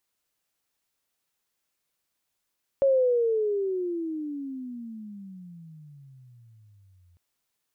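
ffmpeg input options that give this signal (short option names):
-f lavfi -i "aevalsrc='pow(10,(-17-39.5*t/4.35)/20)*sin(2*PI*555*4.35/(-32.5*log(2)/12)*(exp(-32.5*log(2)/12*t/4.35)-1))':d=4.35:s=44100"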